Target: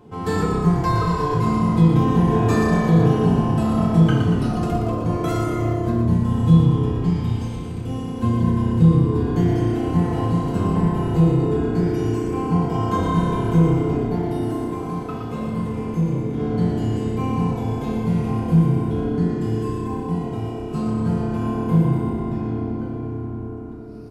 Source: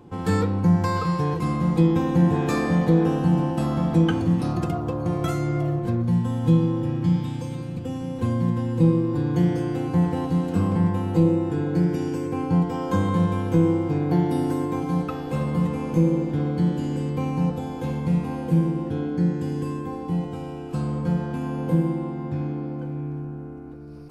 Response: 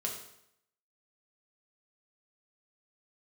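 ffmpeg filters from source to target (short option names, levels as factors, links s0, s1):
-filter_complex "[0:a]asplit=3[s0][s1][s2];[s0]afade=t=out:st=13.95:d=0.02[s3];[s1]flanger=delay=8.4:depth=9.2:regen=73:speed=1.6:shape=sinusoidal,afade=t=in:st=13.95:d=0.02,afade=t=out:st=16.38:d=0.02[s4];[s2]afade=t=in:st=16.38:d=0.02[s5];[s3][s4][s5]amix=inputs=3:normalize=0,asplit=9[s6][s7][s8][s9][s10][s11][s12][s13][s14];[s7]adelay=117,afreqshift=-32,volume=0.501[s15];[s8]adelay=234,afreqshift=-64,volume=0.305[s16];[s9]adelay=351,afreqshift=-96,volume=0.186[s17];[s10]adelay=468,afreqshift=-128,volume=0.114[s18];[s11]adelay=585,afreqshift=-160,volume=0.0692[s19];[s12]adelay=702,afreqshift=-192,volume=0.0422[s20];[s13]adelay=819,afreqshift=-224,volume=0.0257[s21];[s14]adelay=936,afreqshift=-256,volume=0.0157[s22];[s6][s15][s16][s17][s18][s19][s20][s21][s22]amix=inputs=9:normalize=0[s23];[1:a]atrim=start_sample=2205,afade=t=out:st=0.14:d=0.01,atrim=end_sample=6615[s24];[s23][s24]afir=irnorm=-1:irlink=0"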